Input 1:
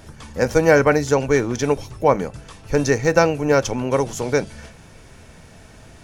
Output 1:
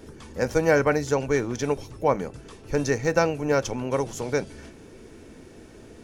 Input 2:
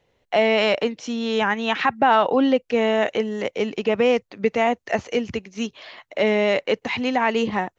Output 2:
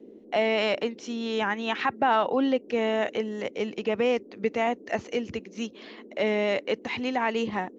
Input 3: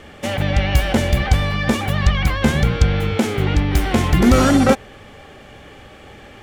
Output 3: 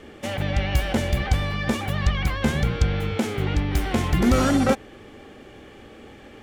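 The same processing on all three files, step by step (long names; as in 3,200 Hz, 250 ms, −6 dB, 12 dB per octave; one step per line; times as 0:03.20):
noise in a band 210–470 Hz −42 dBFS
level −6 dB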